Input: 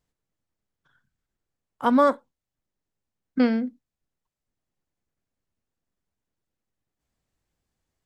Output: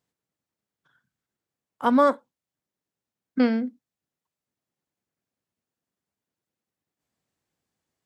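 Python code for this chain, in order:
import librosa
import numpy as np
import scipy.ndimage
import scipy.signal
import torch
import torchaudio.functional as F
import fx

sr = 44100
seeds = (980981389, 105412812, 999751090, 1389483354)

y = scipy.signal.sosfilt(scipy.signal.butter(2, 130.0, 'highpass', fs=sr, output='sos'), x)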